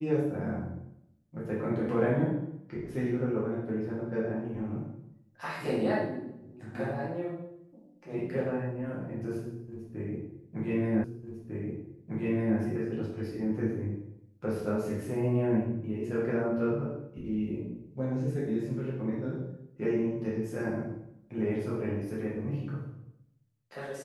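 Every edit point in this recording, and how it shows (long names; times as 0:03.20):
0:11.04: the same again, the last 1.55 s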